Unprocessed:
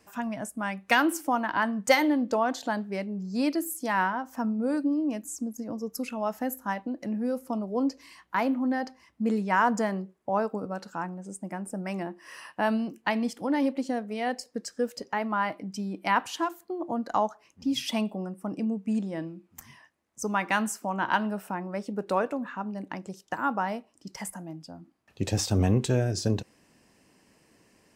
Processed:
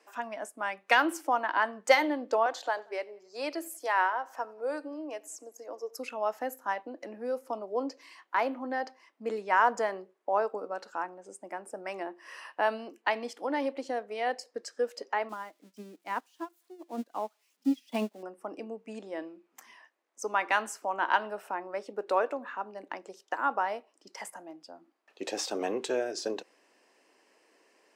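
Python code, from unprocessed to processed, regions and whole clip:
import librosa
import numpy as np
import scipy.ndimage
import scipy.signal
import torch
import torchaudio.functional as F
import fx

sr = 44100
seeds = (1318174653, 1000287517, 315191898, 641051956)

y = fx.chain(x, sr, fx.highpass(hz=350.0, slope=24),
    fx.echo_feedback(ms=91, feedback_pct=48, wet_db=-24.0), at=(2.46, 5.99))
y = fx.chain(y, sr, fx.crossing_spikes(level_db=-28.0),
    fx.peak_eq(hz=220.0, db=14.5, octaves=1.4),
    fx.upward_expand(threshold_db=-31.0, expansion=2.5), at=(15.29, 18.23))
y = scipy.signal.sosfilt(scipy.signal.butter(4, 360.0, 'highpass', fs=sr, output='sos'), y)
y = fx.high_shelf(y, sr, hz=7700.0, db=-12.0)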